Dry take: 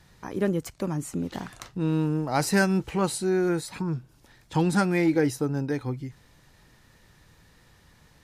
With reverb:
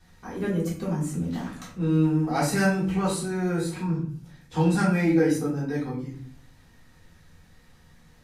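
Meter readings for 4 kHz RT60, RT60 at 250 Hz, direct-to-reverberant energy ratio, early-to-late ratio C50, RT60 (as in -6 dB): 0.35 s, 0.85 s, -8.0 dB, 5.5 dB, 0.55 s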